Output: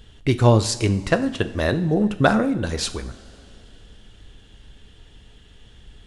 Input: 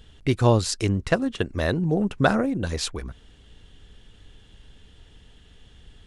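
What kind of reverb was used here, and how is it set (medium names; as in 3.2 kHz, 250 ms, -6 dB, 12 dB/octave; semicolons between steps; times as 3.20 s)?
two-slope reverb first 0.56 s, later 3.5 s, from -17 dB, DRR 9.5 dB; trim +2.5 dB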